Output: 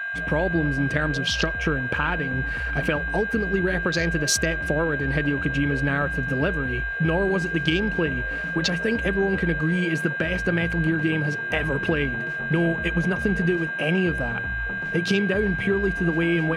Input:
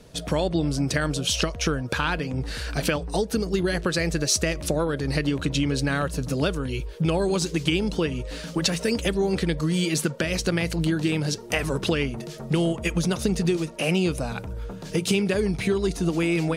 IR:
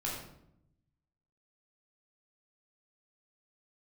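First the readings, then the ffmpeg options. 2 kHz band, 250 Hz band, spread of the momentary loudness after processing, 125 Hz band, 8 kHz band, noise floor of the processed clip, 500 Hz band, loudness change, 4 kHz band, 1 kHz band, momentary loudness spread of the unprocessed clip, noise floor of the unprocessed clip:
+9.5 dB, +0.5 dB, 3 LU, +0.5 dB, -4.0 dB, -29 dBFS, 0.0 dB, +1.5 dB, -2.5 dB, +0.5 dB, 5 LU, -38 dBFS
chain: -filter_complex "[0:a]aeval=exprs='val(0)+0.0447*sin(2*PI*1600*n/s)':c=same,asplit=2[s0][s1];[1:a]atrim=start_sample=2205[s2];[s1][s2]afir=irnorm=-1:irlink=0,volume=0.0531[s3];[s0][s3]amix=inputs=2:normalize=0,afwtdn=0.0282"

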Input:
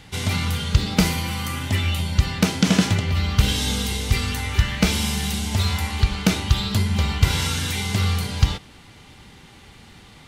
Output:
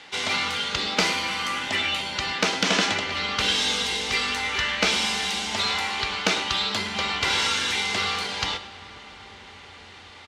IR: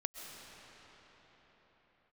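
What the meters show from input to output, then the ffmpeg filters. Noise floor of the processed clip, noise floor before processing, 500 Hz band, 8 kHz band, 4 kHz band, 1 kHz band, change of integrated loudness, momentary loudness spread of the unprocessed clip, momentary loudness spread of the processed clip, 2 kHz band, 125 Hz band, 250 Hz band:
-45 dBFS, -47 dBFS, 0.0 dB, -2.0 dB, +3.5 dB, +3.5 dB, -1.5 dB, 4 LU, 10 LU, +4.0 dB, -20.0 dB, -10.5 dB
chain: -filter_complex "[0:a]acrossover=split=250 7900:gain=0.1 1 0.112[s0][s1][s2];[s0][s1][s2]amix=inputs=3:normalize=0,asplit=2[s3][s4];[s4]highpass=f=720:p=1,volume=3.16,asoftclip=type=tanh:threshold=0.631[s5];[s3][s5]amix=inputs=2:normalize=0,lowpass=f=6000:p=1,volume=0.501,asplit=2[s6][s7];[s7]adelay=105,volume=0.2,highshelf=f=4000:g=-2.36[s8];[s6][s8]amix=inputs=2:normalize=0,asplit=2[s9][s10];[1:a]atrim=start_sample=2205,asetrate=26019,aresample=44100,lowshelf=f=160:g=12[s11];[s10][s11]afir=irnorm=-1:irlink=0,volume=0.158[s12];[s9][s12]amix=inputs=2:normalize=0,volume=0.75"

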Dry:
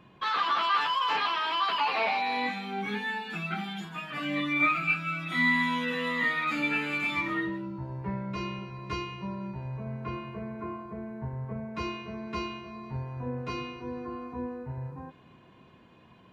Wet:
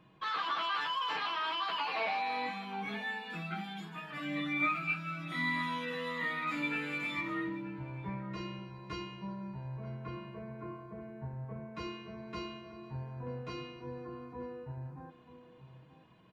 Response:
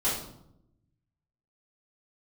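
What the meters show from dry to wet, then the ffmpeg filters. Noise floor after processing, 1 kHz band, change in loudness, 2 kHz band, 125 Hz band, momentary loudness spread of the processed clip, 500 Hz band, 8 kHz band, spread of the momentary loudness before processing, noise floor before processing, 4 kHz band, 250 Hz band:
-58 dBFS, -7.0 dB, -7.0 dB, -7.0 dB, -5.5 dB, 12 LU, -5.5 dB, no reading, 13 LU, -56 dBFS, -6.0 dB, -6.5 dB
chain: -filter_complex "[0:a]aecho=1:1:6.3:0.35,asplit=2[s0][s1];[s1]adelay=932.9,volume=0.224,highshelf=f=4000:g=-21[s2];[s0][s2]amix=inputs=2:normalize=0,volume=0.447"

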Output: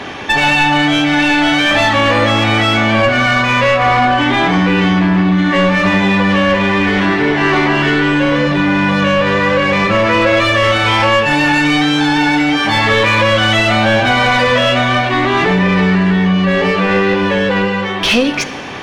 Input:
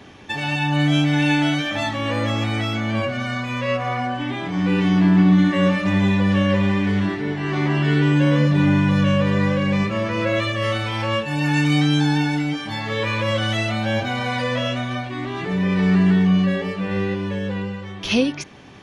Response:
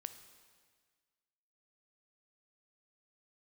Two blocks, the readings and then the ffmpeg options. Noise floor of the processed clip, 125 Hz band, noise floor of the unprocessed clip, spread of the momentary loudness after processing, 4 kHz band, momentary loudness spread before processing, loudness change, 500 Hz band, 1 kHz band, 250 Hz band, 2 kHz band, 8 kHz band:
-18 dBFS, +2.0 dB, -33 dBFS, 2 LU, +11.5 dB, 9 LU, +8.5 dB, +10.5 dB, +13.5 dB, +5.0 dB, +13.0 dB, no reading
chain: -filter_complex "[0:a]bandreject=f=50:t=h:w=6,bandreject=f=100:t=h:w=6,bandreject=f=150:t=h:w=6,bandreject=f=200:t=h:w=6,acompressor=threshold=0.0708:ratio=6,asplit=2[s0][s1];[s1]highpass=f=720:p=1,volume=6.31,asoftclip=type=tanh:threshold=0.178[s2];[s0][s2]amix=inputs=2:normalize=0,lowpass=f=2700:p=1,volume=0.501,asplit=2[s3][s4];[1:a]atrim=start_sample=2205,lowshelf=f=73:g=9[s5];[s4][s5]afir=irnorm=-1:irlink=0,volume=3.76[s6];[s3][s6]amix=inputs=2:normalize=0,volume=1.19"

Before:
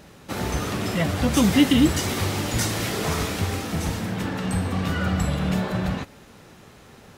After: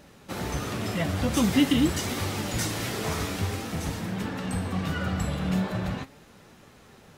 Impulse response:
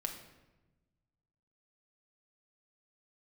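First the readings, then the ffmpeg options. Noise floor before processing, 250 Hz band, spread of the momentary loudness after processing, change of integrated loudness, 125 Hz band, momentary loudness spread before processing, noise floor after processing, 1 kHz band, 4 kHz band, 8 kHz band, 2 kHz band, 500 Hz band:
-49 dBFS, -4.5 dB, 10 LU, -4.5 dB, -4.5 dB, 10 LU, -53 dBFS, -4.5 dB, -4.5 dB, -4.5 dB, -4.5 dB, -4.5 dB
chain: -af "flanger=delay=3.3:depth=7.6:regen=74:speed=0.45:shape=triangular"

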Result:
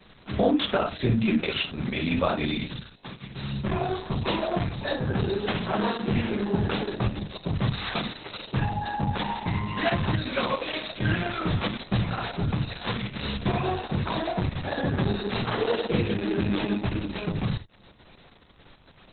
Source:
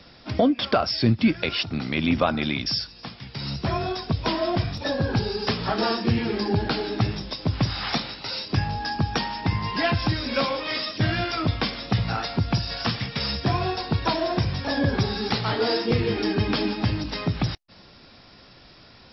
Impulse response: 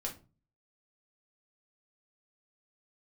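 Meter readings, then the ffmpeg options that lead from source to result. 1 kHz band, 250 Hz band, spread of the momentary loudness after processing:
-2.5 dB, -2.0 dB, 6 LU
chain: -filter_complex "[1:a]atrim=start_sample=2205,atrim=end_sample=4410,asetrate=36162,aresample=44100[s0];[0:a][s0]afir=irnorm=-1:irlink=0,volume=0.668" -ar 48000 -c:a libopus -b:a 6k

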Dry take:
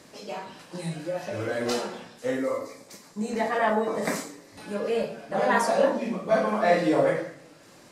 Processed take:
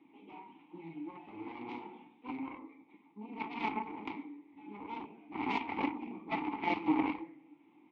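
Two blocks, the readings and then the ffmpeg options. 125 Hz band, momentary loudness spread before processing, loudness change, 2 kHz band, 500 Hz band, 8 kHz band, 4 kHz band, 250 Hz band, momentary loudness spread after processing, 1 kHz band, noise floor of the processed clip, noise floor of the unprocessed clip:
-16.5 dB, 16 LU, -12.0 dB, -11.5 dB, -22.5 dB, under -35 dB, -12.5 dB, -7.0 dB, 19 LU, -9.5 dB, -64 dBFS, -52 dBFS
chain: -filter_complex "[0:a]highpass=f=48:p=1,aresample=8000,aresample=44100,aeval=exprs='0.376*(cos(1*acos(clip(val(0)/0.376,-1,1)))-cos(1*PI/2))+0.0596*(cos(6*acos(clip(val(0)/0.376,-1,1)))-cos(6*PI/2))+0.0944*(cos(7*acos(clip(val(0)/0.376,-1,1)))-cos(7*PI/2))':c=same,asplit=3[s0][s1][s2];[s0]bandpass=f=300:t=q:w=8,volume=1[s3];[s1]bandpass=f=870:t=q:w=8,volume=0.501[s4];[s2]bandpass=f=2240:t=q:w=8,volume=0.355[s5];[s3][s4][s5]amix=inputs=3:normalize=0,volume=1.41" -ar 48000 -c:a libvorbis -b:a 64k

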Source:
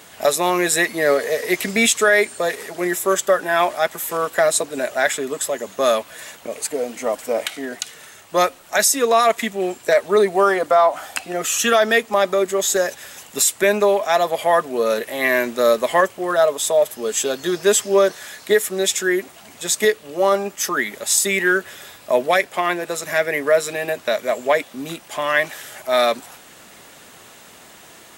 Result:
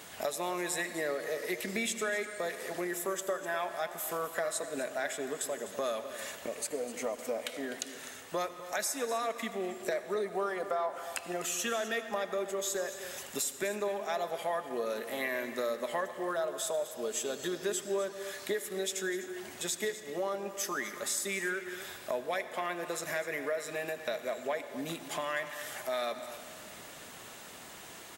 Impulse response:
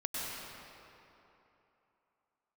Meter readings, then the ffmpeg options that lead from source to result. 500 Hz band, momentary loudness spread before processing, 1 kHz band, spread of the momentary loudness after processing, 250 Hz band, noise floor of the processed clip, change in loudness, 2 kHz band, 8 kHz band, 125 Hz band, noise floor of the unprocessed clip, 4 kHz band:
-16.0 dB, 9 LU, -16.5 dB, 6 LU, -14.0 dB, -48 dBFS, -16.0 dB, -16.0 dB, -15.0 dB, -13.5 dB, -45 dBFS, -15.0 dB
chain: -filter_complex "[0:a]acompressor=threshold=0.0282:ratio=3,aecho=1:1:252:0.2,asplit=2[s0][s1];[1:a]atrim=start_sample=2205,asetrate=57330,aresample=44100[s2];[s1][s2]afir=irnorm=-1:irlink=0,volume=0.299[s3];[s0][s3]amix=inputs=2:normalize=0,volume=0.501"

